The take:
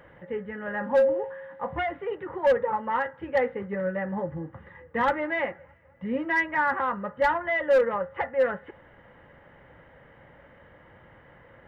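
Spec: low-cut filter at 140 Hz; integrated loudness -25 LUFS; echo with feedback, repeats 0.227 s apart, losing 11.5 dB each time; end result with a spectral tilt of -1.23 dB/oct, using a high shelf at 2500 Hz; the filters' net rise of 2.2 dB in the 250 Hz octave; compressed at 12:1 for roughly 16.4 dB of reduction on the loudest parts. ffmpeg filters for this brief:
-af "highpass=140,equalizer=f=250:t=o:g=3.5,highshelf=f=2.5k:g=4.5,acompressor=threshold=-33dB:ratio=12,aecho=1:1:227|454|681:0.266|0.0718|0.0194,volume=12.5dB"

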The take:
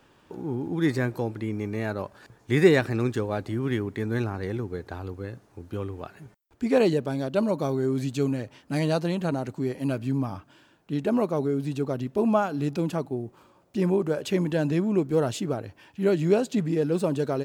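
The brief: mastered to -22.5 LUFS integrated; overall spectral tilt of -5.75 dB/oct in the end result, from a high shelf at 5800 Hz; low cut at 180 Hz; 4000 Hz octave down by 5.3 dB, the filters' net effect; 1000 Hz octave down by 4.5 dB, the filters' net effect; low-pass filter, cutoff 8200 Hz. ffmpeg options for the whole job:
-af "highpass=180,lowpass=8.2k,equalizer=f=1k:t=o:g=-6,equalizer=f=4k:t=o:g=-4.5,highshelf=f=5.8k:g=-5,volume=6dB"

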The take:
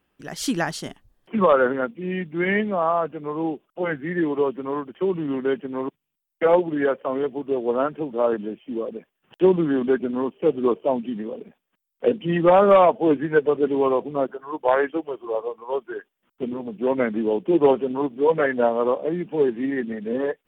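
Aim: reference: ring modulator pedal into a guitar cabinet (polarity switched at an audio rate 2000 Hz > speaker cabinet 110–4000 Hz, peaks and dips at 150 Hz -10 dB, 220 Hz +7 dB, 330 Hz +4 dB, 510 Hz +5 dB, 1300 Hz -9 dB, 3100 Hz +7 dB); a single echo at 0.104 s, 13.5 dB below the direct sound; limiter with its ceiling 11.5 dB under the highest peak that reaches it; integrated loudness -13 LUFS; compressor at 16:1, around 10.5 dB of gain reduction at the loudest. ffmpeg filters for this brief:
-af "acompressor=threshold=-21dB:ratio=16,alimiter=level_in=0.5dB:limit=-24dB:level=0:latency=1,volume=-0.5dB,aecho=1:1:104:0.211,aeval=exprs='val(0)*sgn(sin(2*PI*2000*n/s))':c=same,highpass=110,equalizer=f=150:t=q:w=4:g=-10,equalizer=f=220:t=q:w=4:g=7,equalizer=f=330:t=q:w=4:g=4,equalizer=f=510:t=q:w=4:g=5,equalizer=f=1.3k:t=q:w=4:g=-9,equalizer=f=3.1k:t=q:w=4:g=7,lowpass=f=4k:w=0.5412,lowpass=f=4k:w=1.3066,volume=18dB"

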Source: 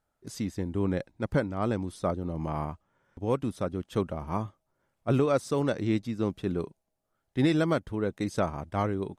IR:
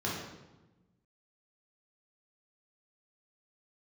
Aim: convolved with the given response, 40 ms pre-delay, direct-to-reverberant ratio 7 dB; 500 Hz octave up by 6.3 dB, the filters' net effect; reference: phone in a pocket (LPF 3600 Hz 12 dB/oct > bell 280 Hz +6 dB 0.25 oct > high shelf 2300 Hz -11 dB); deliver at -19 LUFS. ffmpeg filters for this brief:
-filter_complex "[0:a]equalizer=f=500:t=o:g=8,asplit=2[a][b];[1:a]atrim=start_sample=2205,adelay=40[c];[b][c]afir=irnorm=-1:irlink=0,volume=-14dB[d];[a][d]amix=inputs=2:normalize=0,lowpass=3.6k,equalizer=f=280:t=o:w=0.25:g=6,highshelf=f=2.3k:g=-11,volume=5dB"

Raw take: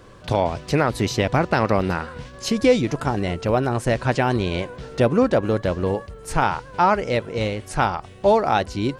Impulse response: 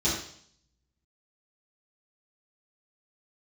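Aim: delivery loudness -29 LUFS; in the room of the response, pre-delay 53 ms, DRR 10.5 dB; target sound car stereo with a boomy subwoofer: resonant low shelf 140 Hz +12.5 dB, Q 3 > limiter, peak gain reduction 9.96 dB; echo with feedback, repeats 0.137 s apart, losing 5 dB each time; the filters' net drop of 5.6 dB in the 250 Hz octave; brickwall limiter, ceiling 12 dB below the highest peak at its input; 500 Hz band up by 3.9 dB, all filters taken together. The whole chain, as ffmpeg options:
-filter_complex "[0:a]equalizer=f=250:t=o:g=-8,equalizer=f=500:t=o:g=7.5,alimiter=limit=-13dB:level=0:latency=1,aecho=1:1:137|274|411|548|685|822|959:0.562|0.315|0.176|0.0988|0.0553|0.031|0.0173,asplit=2[a][b];[1:a]atrim=start_sample=2205,adelay=53[c];[b][c]afir=irnorm=-1:irlink=0,volume=-21dB[d];[a][d]amix=inputs=2:normalize=0,lowshelf=f=140:t=q:w=3:g=12.5,volume=-9.5dB,alimiter=limit=-20dB:level=0:latency=1"

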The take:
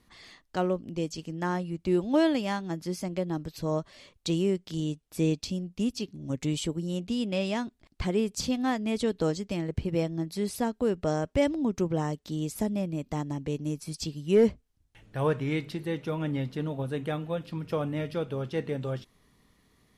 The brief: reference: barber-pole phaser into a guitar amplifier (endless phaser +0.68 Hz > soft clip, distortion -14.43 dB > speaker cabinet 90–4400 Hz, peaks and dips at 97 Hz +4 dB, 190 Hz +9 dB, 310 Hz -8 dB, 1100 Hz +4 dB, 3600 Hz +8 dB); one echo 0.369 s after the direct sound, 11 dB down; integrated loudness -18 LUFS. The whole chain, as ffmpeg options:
-filter_complex "[0:a]aecho=1:1:369:0.282,asplit=2[a][b];[b]afreqshift=0.68[c];[a][c]amix=inputs=2:normalize=1,asoftclip=threshold=-24dB,highpass=90,equalizer=f=97:t=q:w=4:g=4,equalizer=f=190:t=q:w=4:g=9,equalizer=f=310:t=q:w=4:g=-8,equalizer=f=1.1k:t=q:w=4:g=4,equalizer=f=3.6k:t=q:w=4:g=8,lowpass=f=4.4k:w=0.5412,lowpass=f=4.4k:w=1.3066,volume=15.5dB"

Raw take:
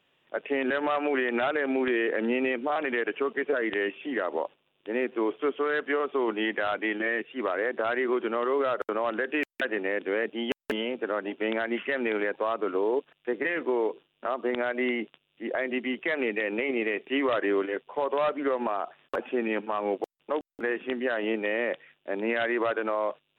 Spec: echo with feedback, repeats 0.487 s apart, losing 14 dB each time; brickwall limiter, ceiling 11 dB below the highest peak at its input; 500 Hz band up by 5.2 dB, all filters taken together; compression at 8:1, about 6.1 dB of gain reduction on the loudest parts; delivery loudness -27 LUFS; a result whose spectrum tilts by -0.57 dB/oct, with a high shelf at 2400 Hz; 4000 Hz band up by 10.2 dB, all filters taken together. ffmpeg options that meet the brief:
-af "equalizer=f=500:t=o:g=6,highshelf=f=2.4k:g=7.5,equalizer=f=4k:t=o:g=8.5,acompressor=threshold=-24dB:ratio=8,alimiter=limit=-20dB:level=0:latency=1,aecho=1:1:487|974:0.2|0.0399,volume=3.5dB"

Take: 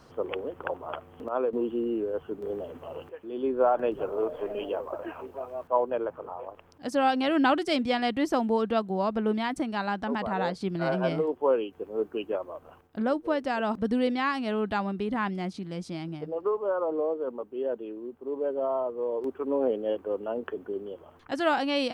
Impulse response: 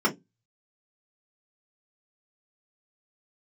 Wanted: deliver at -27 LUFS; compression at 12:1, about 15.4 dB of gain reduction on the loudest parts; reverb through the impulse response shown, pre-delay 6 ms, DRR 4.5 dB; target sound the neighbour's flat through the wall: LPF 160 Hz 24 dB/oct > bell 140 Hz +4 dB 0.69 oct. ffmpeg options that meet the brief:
-filter_complex "[0:a]acompressor=threshold=-34dB:ratio=12,asplit=2[a][b];[1:a]atrim=start_sample=2205,adelay=6[c];[b][c]afir=irnorm=-1:irlink=0,volume=-18.5dB[d];[a][d]amix=inputs=2:normalize=0,lowpass=f=160:w=0.5412,lowpass=f=160:w=1.3066,equalizer=f=140:t=o:w=0.69:g=4,volume=23.5dB"

